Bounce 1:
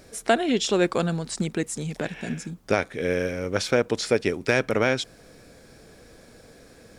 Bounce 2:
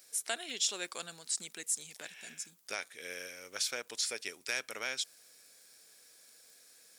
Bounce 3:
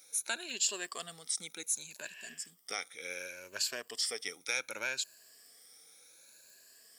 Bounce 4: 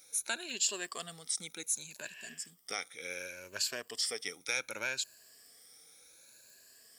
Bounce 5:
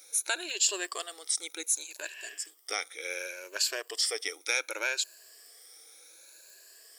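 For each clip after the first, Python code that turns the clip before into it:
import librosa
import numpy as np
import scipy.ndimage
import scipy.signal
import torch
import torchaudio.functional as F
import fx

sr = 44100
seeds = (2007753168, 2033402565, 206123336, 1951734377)

y1 = fx.dmg_crackle(x, sr, seeds[0], per_s=15.0, level_db=-44.0)
y1 = np.diff(y1, prepend=0.0)
y2 = fx.spec_ripple(y1, sr, per_octave=1.4, drift_hz=0.67, depth_db=13)
y2 = y2 * 10.0 ** (-1.5 / 20.0)
y3 = fx.low_shelf(y2, sr, hz=140.0, db=9.5)
y4 = fx.brickwall_highpass(y3, sr, low_hz=290.0)
y4 = y4 * 10.0 ** (5.0 / 20.0)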